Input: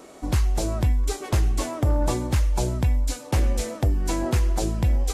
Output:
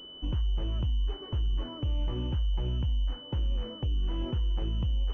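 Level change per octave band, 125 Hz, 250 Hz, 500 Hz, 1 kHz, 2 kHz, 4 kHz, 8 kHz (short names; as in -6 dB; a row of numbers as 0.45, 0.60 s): -7.5 dB, -10.5 dB, -13.5 dB, -16.5 dB, -18.0 dB, -2.0 dB, under -35 dB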